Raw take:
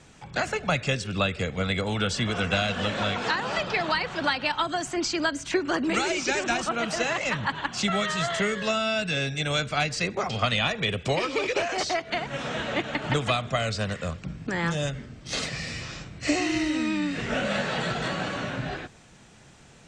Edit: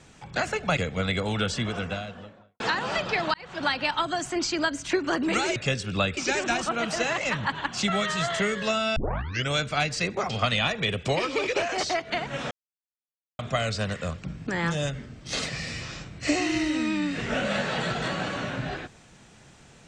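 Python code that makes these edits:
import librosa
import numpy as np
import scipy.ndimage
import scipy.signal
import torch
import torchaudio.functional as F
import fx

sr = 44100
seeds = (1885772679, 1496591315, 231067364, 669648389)

y = fx.studio_fade_out(x, sr, start_s=1.94, length_s=1.27)
y = fx.edit(y, sr, fx.move(start_s=0.77, length_s=0.61, to_s=6.17),
    fx.fade_in_span(start_s=3.95, length_s=0.37),
    fx.tape_start(start_s=8.96, length_s=0.54),
    fx.silence(start_s=12.51, length_s=0.88), tone=tone)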